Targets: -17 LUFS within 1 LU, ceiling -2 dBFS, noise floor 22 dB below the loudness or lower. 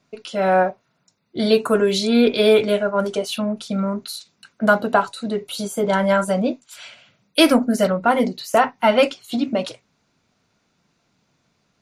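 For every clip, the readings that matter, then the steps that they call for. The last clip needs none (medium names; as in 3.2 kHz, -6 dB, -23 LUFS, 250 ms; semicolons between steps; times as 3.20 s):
loudness -19.5 LUFS; peak level -2.0 dBFS; loudness target -17.0 LUFS
-> trim +2.5 dB; peak limiter -2 dBFS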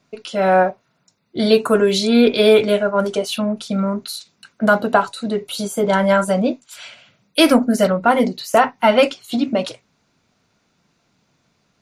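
loudness -17.0 LUFS; peak level -2.0 dBFS; noise floor -66 dBFS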